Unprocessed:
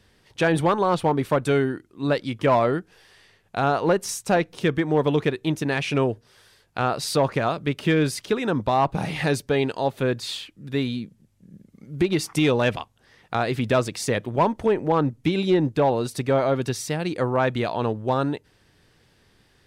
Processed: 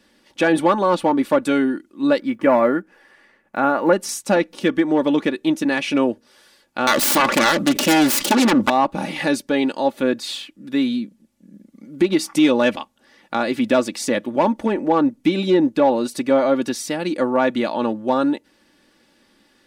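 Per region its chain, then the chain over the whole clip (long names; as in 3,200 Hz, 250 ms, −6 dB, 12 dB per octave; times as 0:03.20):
0:02.19–0:03.93: one scale factor per block 7 bits + high shelf with overshoot 2,600 Hz −9 dB, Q 1.5
0:06.87–0:08.70: phase distortion by the signal itself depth 0.68 ms + envelope flattener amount 70%
whole clip: low shelf with overshoot 140 Hz −12.5 dB, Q 1.5; comb filter 3.5 ms, depth 61%; level +1.5 dB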